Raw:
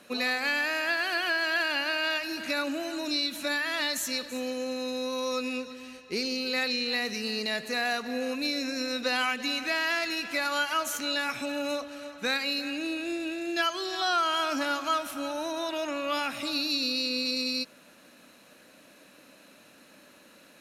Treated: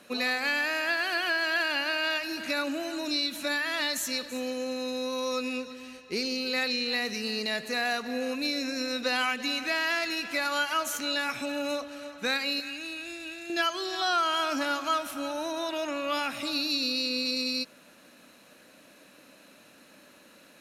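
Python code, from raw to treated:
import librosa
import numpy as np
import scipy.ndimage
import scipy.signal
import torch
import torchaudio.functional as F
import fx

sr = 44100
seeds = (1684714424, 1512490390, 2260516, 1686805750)

y = fx.peak_eq(x, sr, hz=400.0, db=-12.0, octaves=2.1, at=(12.6, 13.5))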